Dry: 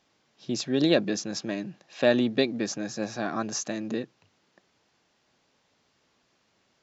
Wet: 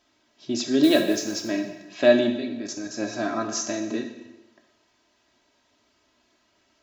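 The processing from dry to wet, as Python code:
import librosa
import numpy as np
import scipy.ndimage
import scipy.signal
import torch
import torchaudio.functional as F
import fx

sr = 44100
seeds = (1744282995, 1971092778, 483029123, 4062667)

y = x + 0.72 * np.pad(x, (int(3.1 * sr / 1000.0), 0))[:len(x)]
y = fx.mod_noise(y, sr, seeds[0], snr_db=23, at=(0.83, 1.48))
y = fx.level_steps(y, sr, step_db=17, at=(2.35, 2.9), fade=0.02)
y = fx.rev_plate(y, sr, seeds[1], rt60_s=1.0, hf_ratio=0.95, predelay_ms=0, drr_db=4.0)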